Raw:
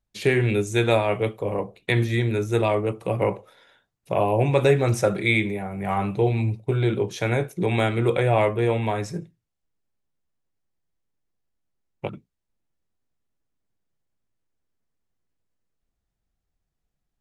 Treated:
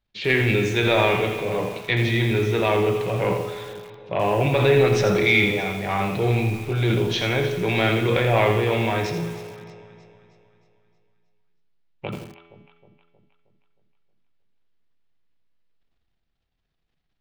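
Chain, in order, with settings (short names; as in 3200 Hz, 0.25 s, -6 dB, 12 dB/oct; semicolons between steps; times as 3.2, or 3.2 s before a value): transient shaper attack -4 dB, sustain +8 dB; resonator 84 Hz, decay 1.5 s, harmonics all, mix 70%; in parallel at -4 dB: soft clip -26.5 dBFS, distortion -13 dB; on the sum: LPF 3900 Hz 24 dB/oct; high shelf 2400 Hz +12 dB; on a send: echo with dull and thin repeats by turns 0.157 s, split 850 Hz, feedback 70%, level -12 dB; on the sum: lo-fi delay 83 ms, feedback 35%, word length 7-bit, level -7 dB; gain +5 dB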